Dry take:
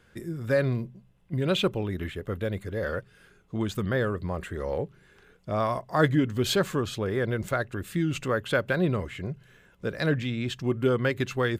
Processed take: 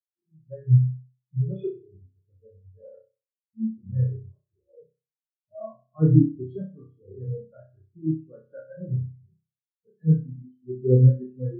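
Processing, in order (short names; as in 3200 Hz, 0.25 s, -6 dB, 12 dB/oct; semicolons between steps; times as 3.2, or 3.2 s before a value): on a send: flutter echo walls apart 5.4 m, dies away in 1.2 s; on the sum: spectral expander 4:1; gain +1.5 dB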